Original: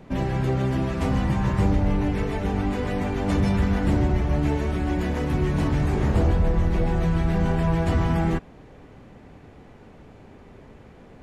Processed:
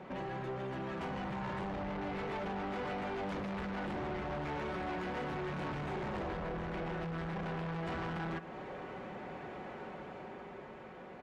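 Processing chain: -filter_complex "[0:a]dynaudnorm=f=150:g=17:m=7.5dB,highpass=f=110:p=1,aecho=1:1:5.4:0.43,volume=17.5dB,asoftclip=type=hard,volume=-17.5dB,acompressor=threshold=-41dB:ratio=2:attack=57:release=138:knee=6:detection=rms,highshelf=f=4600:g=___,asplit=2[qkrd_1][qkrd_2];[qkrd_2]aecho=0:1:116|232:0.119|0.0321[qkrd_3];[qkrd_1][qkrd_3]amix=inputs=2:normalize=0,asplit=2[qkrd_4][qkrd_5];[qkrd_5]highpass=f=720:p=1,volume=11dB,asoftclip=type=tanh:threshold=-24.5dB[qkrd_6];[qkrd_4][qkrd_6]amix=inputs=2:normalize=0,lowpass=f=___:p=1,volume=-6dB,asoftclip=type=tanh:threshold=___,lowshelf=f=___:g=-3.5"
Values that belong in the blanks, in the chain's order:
-4.5, 1400, -32.5dB, 480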